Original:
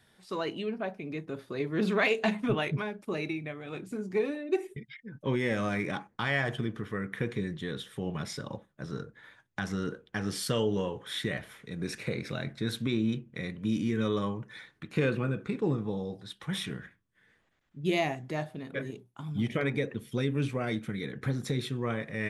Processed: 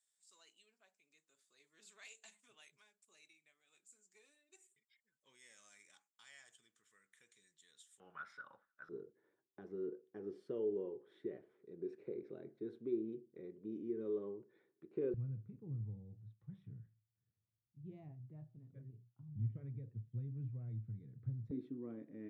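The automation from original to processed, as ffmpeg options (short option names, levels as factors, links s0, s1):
-af "asetnsamples=n=441:p=0,asendcmd='8 bandpass f 1400;8.89 bandpass f 380;15.14 bandpass f 110;21.51 bandpass f 290',bandpass=f=7500:t=q:w=8.3:csg=0"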